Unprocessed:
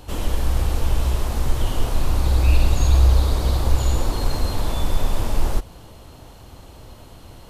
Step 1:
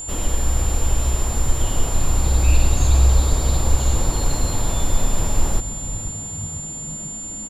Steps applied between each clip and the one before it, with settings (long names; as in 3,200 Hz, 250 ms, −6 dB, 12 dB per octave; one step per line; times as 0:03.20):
echo with shifted repeats 495 ms, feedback 60%, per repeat −57 Hz, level −14 dB
steady tone 7,200 Hz −29 dBFS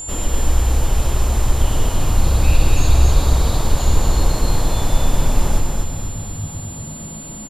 repeating echo 239 ms, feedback 36%, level −3.5 dB
level +1.5 dB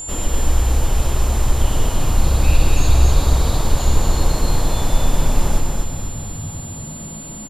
mains-hum notches 50/100 Hz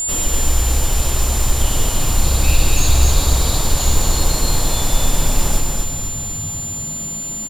high-shelf EQ 2,800 Hz +11 dB
in parallel at −11 dB: log-companded quantiser 4 bits
on the sum: level −3 dB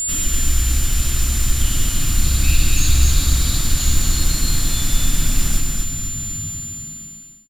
fade-out on the ending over 1.14 s
flat-topped bell 640 Hz −13.5 dB
level −1 dB